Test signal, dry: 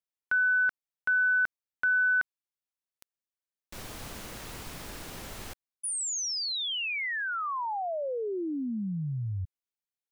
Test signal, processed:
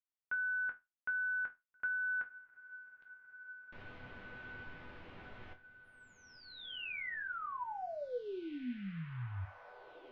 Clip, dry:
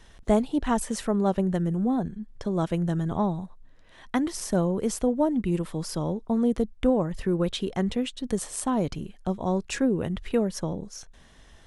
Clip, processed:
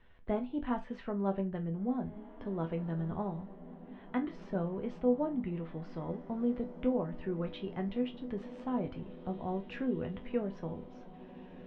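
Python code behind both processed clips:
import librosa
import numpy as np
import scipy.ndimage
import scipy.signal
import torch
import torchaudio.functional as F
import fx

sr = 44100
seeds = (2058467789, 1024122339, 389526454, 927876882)

p1 = scipy.signal.sosfilt(scipy.signal.butter(4, 2900.0, 'lowpass', fs=sr, output='sos'), x)
p2 = fx.resonator_bank(p1, sr, root=40, chord='minor', decay_s=0.21)
y = p2 + fx.echo_diffused(p2, sr, ms=1935, feedback_pct=56, wet_db=-15, dry=0)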